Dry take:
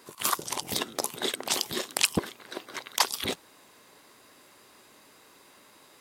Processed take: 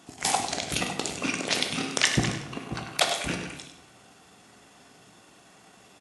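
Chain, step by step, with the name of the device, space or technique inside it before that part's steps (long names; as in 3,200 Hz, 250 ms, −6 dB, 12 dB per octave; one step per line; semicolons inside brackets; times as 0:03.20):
delay that plays each chunk backwards 306 ms, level −11 dB
monster voice (pitch shifter −6 semitones; low-shelf EQ 110 Hz +5 dB; single-tap delay 100 ms −10 dB; convolution reverb RT60 0.90 s, pre-delay 13 ms, DRR 5 dB)
high-pass filter 56 Hz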